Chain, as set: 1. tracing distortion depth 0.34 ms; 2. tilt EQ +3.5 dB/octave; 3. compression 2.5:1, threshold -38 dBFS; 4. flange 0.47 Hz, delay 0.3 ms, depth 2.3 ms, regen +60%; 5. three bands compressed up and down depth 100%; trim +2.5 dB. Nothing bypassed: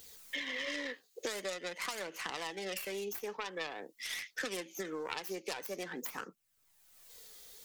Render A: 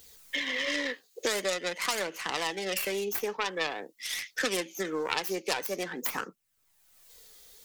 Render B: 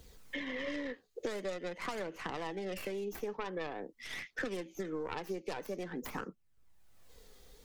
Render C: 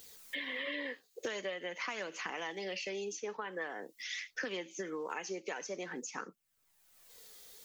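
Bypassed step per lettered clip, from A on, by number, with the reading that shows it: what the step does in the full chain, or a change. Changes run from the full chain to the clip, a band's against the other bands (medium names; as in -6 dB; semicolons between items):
3, mean gain reduction 6.0 dB; 2, 8 kHz band -11.0 dB; 1, crest factor change -4.5 dB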